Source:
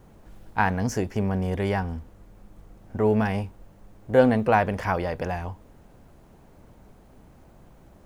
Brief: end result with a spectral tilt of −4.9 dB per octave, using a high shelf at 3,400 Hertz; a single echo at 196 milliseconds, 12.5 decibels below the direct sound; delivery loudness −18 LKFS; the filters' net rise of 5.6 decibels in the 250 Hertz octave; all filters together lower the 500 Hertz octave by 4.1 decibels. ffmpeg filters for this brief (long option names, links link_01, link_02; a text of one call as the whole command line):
ffmpeg -i in.wav -af "equalizer=frequency=250:width_type=o:gain=8,equalizer=frequency=500:width_type=o:gain=-7,highshelf=frequency=3400:gain=6.5,aecho=1:1:196:0.237,volume=5dB" out.wav